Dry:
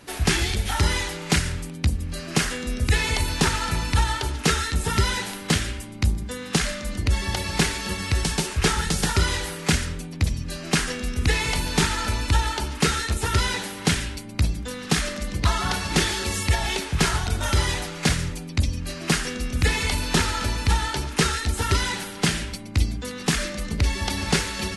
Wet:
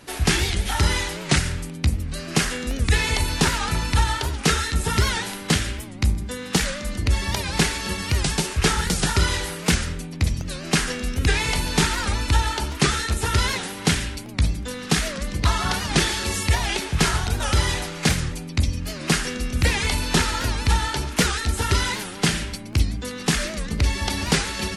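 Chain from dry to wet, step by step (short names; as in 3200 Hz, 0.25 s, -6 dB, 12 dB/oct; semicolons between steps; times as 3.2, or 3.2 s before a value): de-hum 96.13 Hz, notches 27; crackling interface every 0.77 s, samples 64, repeat, from 0.4; record warp 78 rpm, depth 160 cents; gain +1.5 dB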